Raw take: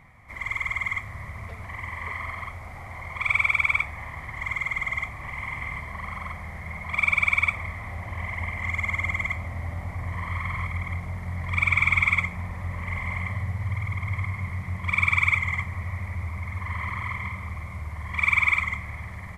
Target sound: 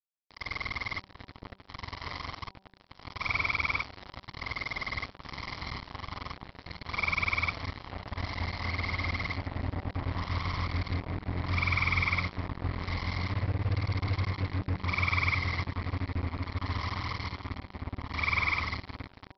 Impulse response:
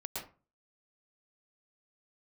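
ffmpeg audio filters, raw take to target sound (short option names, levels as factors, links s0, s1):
-af "tremolo=f=190:d=0.333,aresample=11025,acrusher=bits=4:mix=0:aa=0.5,aresample=44100,equalizer=f=2300:t=o:w=1.3:g=-7,bandreject=f=192.3:t=h:w=4,bandreject=f=384.6:t=h:w=4,bandreject=f=576.9:t=h:w=4,bandreject=f=769.2:t=h:w=4,bandreject=f=961.5:t=h:w=4"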